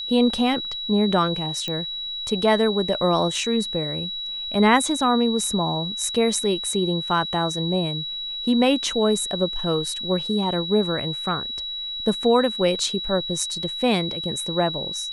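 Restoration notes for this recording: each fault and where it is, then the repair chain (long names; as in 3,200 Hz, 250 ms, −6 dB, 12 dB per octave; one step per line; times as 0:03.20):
whistle 3,900 Hz −28 dBFS
0:01.68: click −14 dBFS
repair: click removal
notch filter 3,900 Hz, Q 30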